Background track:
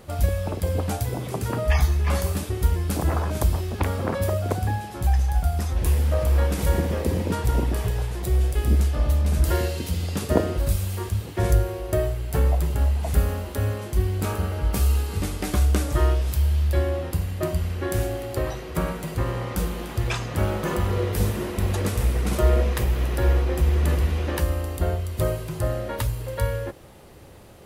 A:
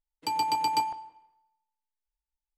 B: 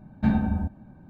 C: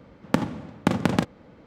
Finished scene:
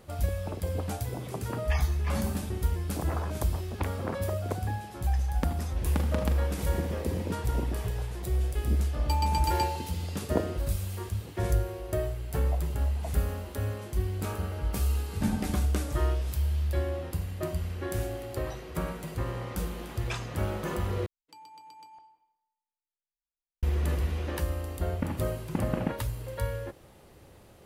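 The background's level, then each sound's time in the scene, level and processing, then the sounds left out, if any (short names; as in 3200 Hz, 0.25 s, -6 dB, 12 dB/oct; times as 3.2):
background track -7 dB
1.92 add B -12 dB
5.09 add C -11 dB
8.83 add A -4 dB + G.711 law mismatch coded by mu
14.98 add B -7.5 dB
21.06 replace with A -14 dB + compressor 16:1, threshold -33 dBFS
24.68 add C -6.5 dB + CVSD 16 kbps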